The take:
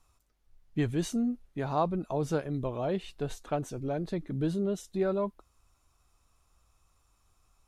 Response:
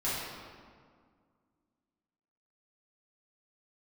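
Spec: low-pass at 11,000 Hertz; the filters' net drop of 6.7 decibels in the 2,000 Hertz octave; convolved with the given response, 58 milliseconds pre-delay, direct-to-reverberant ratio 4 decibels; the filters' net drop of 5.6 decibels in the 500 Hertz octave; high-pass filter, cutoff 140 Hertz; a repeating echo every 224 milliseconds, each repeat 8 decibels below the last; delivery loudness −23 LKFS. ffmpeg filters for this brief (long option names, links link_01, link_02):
-filter_complex "[0:a]highpass=140,lowpass=11000,equalizer=frequency=500:width_type=o:gain=-7,equalizer=frequency=2000:width_type=o:gain=-9,aecho=1:1:224|448|672|896|1120:0.398|0.159|0.0637|0.0255|0.0102,asplit=2[link_01][link_02];[1:a]atrim=start_sample=2205,adelay=58[link_03];[link_02][link_03]afir=irnorm=-1:irlink=0,volume=-12dB[link_04];[link_01][link_04]amix=inputs=2:normalize=0,volume=11dB"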